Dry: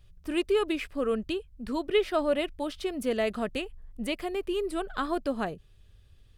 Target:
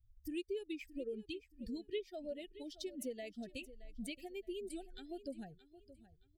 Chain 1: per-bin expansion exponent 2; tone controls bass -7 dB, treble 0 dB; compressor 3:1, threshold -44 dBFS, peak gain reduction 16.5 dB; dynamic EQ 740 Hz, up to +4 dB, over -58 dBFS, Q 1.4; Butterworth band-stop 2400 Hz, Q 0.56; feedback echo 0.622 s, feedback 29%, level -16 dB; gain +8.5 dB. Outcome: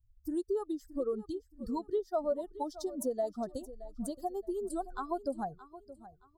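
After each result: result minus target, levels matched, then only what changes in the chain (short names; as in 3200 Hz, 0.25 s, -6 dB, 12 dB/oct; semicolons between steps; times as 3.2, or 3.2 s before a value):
2000 Hz band -12.5 dB; compressor: peak gain reduction -6.5 dB
change: Butterworth band-stop 1100 Hz, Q 0.56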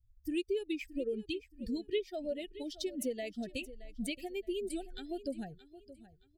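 compressor: peak gain reduction -6.5 dB
change: compressor 3:1, threshold -54 dBFS, peak gain reduction 23 dB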